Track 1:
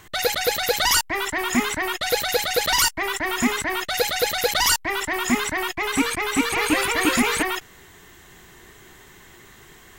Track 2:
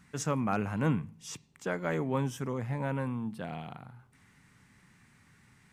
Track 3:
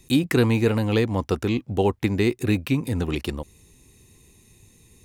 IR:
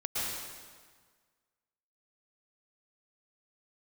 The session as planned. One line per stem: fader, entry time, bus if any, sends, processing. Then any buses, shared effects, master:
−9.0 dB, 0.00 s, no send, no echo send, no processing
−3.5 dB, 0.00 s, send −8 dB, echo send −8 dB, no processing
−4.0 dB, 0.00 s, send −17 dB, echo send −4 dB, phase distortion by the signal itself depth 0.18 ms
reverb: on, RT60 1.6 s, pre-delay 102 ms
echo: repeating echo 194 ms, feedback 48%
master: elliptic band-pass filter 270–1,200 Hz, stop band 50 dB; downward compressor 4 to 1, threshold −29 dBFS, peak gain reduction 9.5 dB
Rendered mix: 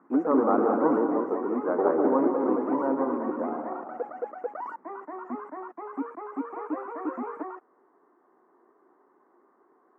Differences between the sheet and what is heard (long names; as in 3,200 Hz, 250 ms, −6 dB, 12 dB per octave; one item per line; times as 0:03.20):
stem 2 −3.5 dB → +5.0 dB
master: missing downward compressor 4 to 1, threshold −29 dBFS, peak gain reduction 9.5 dB